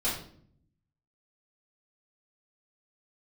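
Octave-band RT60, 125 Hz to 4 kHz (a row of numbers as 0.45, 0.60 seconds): 1.2, 1.0, 0.65, 0.50, 0.45, 0.45 seconds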